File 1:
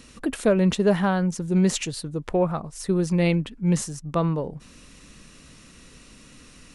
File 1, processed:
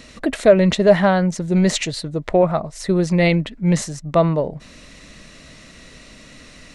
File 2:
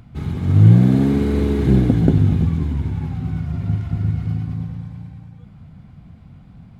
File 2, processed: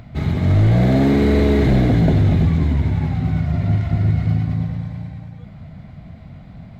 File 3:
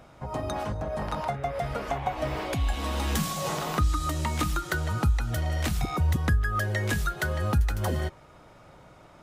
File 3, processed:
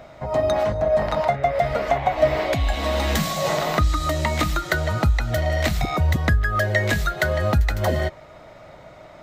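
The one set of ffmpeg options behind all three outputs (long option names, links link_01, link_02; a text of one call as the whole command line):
ffmpeg -i in.wav -af "apsyclip=14.5dB,equalizer=frequency=630:width_type=o:width=0.33:gain=11,equalizer=frequency=2000:width_type=o:width=0.33:gain=8,equalizer=frequency=4000:width_type=o:width=0.33:gain=5,equalizer=frequency=10000:width_type=o:width=0.33:gain=-9,volume=-10dB" out.wav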